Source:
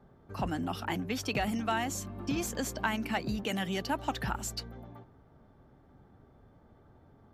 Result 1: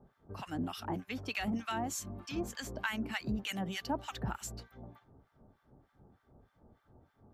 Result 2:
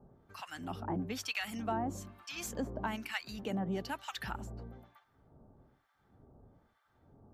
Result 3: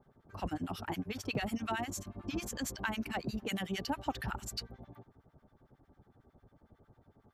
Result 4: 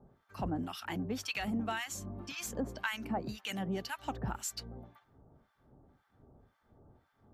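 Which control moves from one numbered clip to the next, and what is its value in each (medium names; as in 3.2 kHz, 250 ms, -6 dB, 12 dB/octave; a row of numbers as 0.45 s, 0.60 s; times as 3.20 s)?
harmonic tremolo, rate: 3.3 Hz, 1.1 Hz, 11 Hz, 1.9 Hz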